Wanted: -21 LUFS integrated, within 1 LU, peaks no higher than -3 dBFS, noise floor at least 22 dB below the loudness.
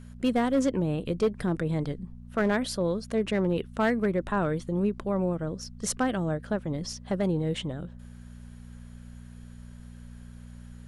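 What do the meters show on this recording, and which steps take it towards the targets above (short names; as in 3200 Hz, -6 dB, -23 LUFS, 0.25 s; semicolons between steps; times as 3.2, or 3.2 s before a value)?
clipped 0.5%; flat tops at -18.0 dBFS; hum 60 Hz; harmonics up to 240 Hz; hum level -43 dBFS; loudness -29.0 LUFS; peak -18.0 dBFS; loudness target -21.0 LUFS
-> clip repair -18 dBFS; de-hum 60 Hz, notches 4; gain +8 dB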